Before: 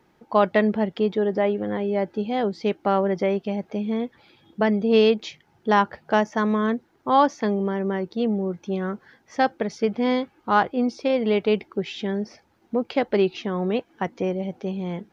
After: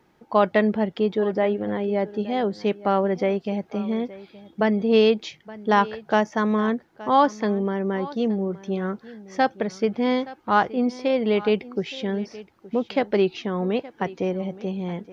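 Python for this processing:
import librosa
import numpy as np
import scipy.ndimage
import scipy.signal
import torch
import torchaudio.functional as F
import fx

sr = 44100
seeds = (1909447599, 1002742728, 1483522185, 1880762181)

y = x + 10.0 ** (-18.5 / 20.0) * np.pad(x, (int(871 * sr / 1000.0), 0))[:len(x)]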